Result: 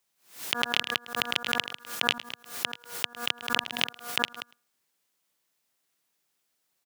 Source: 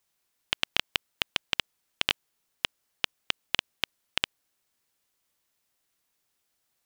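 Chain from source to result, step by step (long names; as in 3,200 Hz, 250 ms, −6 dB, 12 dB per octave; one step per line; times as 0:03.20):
delay that plays each chunk backwards 117 ms, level −11 dB
high-pass filter 120 Hz 24 dB per octave
hum removal 239.4 Hz, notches 7
on a send: single-tap delay 106 ms −23 dB
on the sum: background raised ahead of every attack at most 140 dB per second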